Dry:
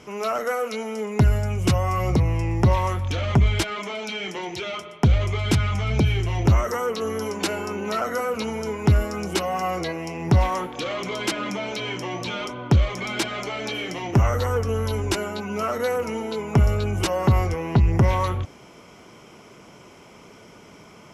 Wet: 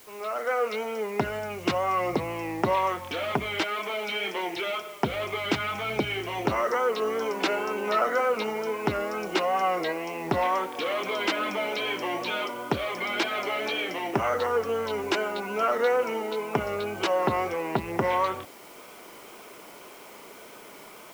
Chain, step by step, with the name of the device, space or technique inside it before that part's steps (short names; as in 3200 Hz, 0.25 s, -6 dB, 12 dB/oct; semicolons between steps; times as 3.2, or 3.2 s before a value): dictaphone (BPF 360–3600 Hz; AGC gain up to 10.5 dB; wow and flutter; white noise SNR 24 dB); gain -8 dB